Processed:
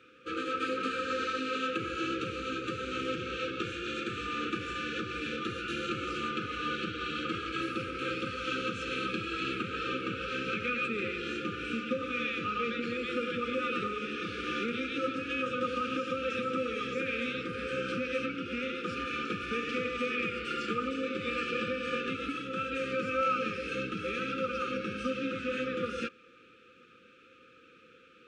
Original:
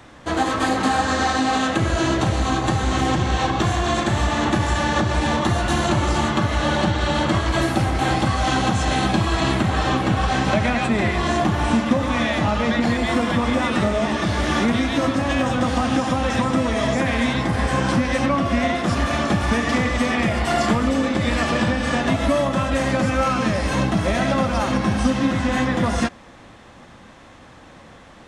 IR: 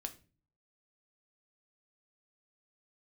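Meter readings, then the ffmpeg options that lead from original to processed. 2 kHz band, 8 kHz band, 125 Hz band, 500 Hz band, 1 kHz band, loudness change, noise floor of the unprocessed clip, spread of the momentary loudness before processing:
-10.5 dB, -21.0 dB, -23.0 dB, -11.5 dB, -14.0 dB, -13.0 dB, -45 dBFS, 1 LU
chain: -filter_complex "[0:a]asplit=3[s0][s1][s2];[s0]bandpass=f=730:t=q:w=8,volume=1[s3];[s1]bandpass=f=1090:t=q:w=8,volume=0.501[s4];[s2]bandpass=f=2440:t=q:w=8,volume=0.355[s5];[s3][s4][s5]amix=inputs=3:normalize=0,afftfilt=real='re*(1-between(b*sr/4096,530,1200))':imag='im*(1-between(b*sr/4096,530,1200))':win_size=4096:overlap=0.75,volume=2.24"

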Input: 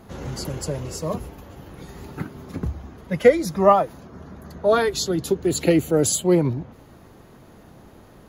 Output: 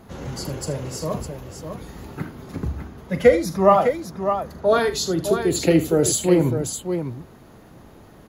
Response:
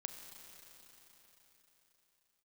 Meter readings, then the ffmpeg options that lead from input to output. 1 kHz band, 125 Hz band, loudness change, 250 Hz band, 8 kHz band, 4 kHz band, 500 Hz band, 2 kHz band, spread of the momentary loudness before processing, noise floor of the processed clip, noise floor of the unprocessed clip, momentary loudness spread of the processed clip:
+1.0 dB, +1.0 dB, +0.5 dB, +1.0 dB, +1.0 dB, +1.0 dB, +1.0 dB, +1.0 dB, 21 LU, -47 dBFS, -49 dBFS, 18 LU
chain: -af "aecho=1:1:42|77|605:0.251|0.2|0.422"

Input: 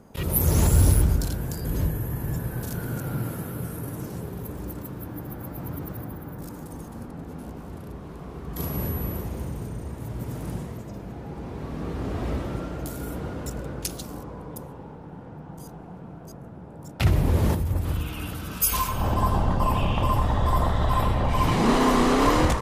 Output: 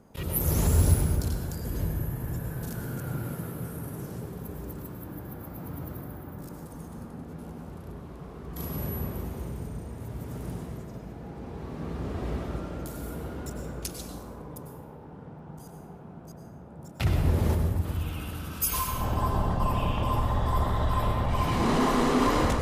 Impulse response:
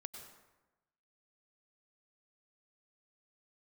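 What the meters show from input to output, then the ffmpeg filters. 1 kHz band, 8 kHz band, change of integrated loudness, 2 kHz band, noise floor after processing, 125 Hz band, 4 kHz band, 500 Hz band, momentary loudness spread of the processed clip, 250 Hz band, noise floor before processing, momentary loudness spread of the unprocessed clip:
-4.0 dB, -4.5 dB, -4.0 dB, -4.0 dB, -45 dBFS, -3.5 dB, -4.5 dB, -3.5 dB, 18 LU, -4.0 dB, -41 dBFS, 19 LU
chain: -filter_complex "[1:a]atrim=start_sample=2205[s0];[0:a][s0]afir=irnorm=-1:irlink=0"

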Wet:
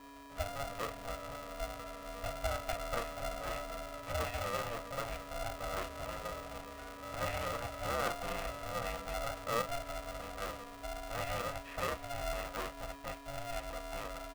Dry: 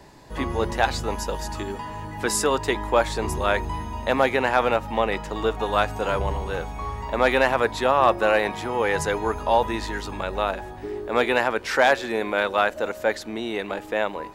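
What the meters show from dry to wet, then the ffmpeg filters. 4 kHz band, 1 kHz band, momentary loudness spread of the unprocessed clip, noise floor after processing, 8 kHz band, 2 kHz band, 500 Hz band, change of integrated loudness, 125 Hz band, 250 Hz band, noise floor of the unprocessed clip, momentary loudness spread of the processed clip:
-13.0 dB, -16.0 dB, 11 LU, -50 dBFS, -13.0 dB, -17.5 dB, -17.5 dB, -16.0 dB, -12.5 dB, -18.5 dB, -39 dBFS, 8 LU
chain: -filter_complex "[0:a]asplit=3[s0][s1][s2];[s0]bandpass=f=300:t=q:w=8,volume=1[s3];[s1]bandpass=f=870:t=q:w=8,volume=0.501[s4];[s2]bandpass=f=2240:t=q:w=8,volume=0.355[s5];[s3][s4][s5]amix=inputs=3:normalize=0,aeval=exprs='val(0)+0.00316*sin(2*PI*630*n/s)':c=same,bandreject=f=770:w=12,asplit=2[s6][s7];[s7]adelay=32,volume=0.355[s8];[s6][s8]amix=inputs=2:normalize=0,aecho=1:1:497:0.0631,acrossover=split=120|2900[s9][s10][s11];[s11]acrusher=bits=4:mix=0:aa=0.000001[s12];[s9][s10][s12]amix=inputs=3:normalize=0,aeval=exprs='val(0)*sgn(sin(2*PI*350*n/s))':c=same,volume=0.794"

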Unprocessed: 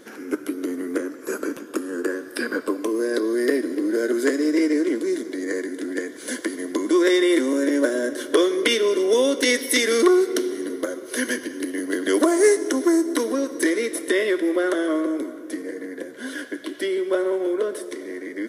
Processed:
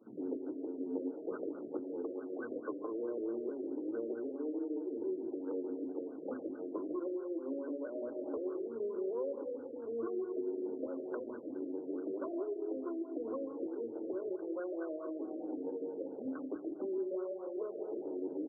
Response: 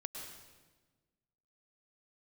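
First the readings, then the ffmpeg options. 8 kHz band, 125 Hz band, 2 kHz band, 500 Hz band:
under -40 dB, no reading, -32.0 dB, -16.0 dB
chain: -filter_complex "[0:a]highpass=79,bandreject=f=50:t=h:w=6,bandreject=f=100:t=h:w=6,bandreject=f=150:t=h:w=6,bandreject=f=200:t=h:w=6,bandreject=f=250:t=h:w=6,bandreject=f=300:t=h:w=6,bandreject=f=350:t=h:w=6,bandreject=f=400:t=h:w=6,afwtdn=0.0282,areverse,acompressor=mode=upward:threshold=0.01:ratio=2.5,areverse,alimiter=limit=0.211:level=0:latency=1:release=190,acompressor=threshold=0.0178:ratio=12,flanger=delay=9:depth=2.3:regen=-44:speed=1.5:shape=triangular,acrossover=split=220[s0][s1];[s0]adelay=30[s2];[s2][s1]amix=inputs=2:normalize=0,asplit=2[s3][s4];[1:a]atrim=start_sample=2205,afade=t=out:st=0.3:d=0.01,atrim=end_sample=13671[s5];[s4][s5]afir=irnorm=-1:irlink=0,volume=1.5[s6];[s3][s6]amix=inputs=2:normalize=0,afftfilt=real='re*lt(b*sr/1024,660*pow(1600/660,0.5+0.5*sin(2*PI*4.6*pts/sr)))':imag='im*lt(b*sr/1024,660*pow(1600/660,0.5+0.5*sin(2*PI*4.6*pts/sr)))':win_size=1024:overlap=0.75,volume=0.794"

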